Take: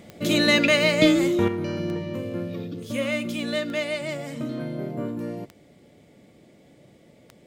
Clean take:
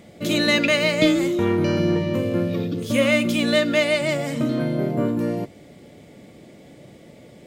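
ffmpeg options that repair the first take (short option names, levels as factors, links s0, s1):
-af "adeclick=t=4,asetnsamples=n=441:p=0,asendcmd='1.48 volume volume 8dB',volume=1"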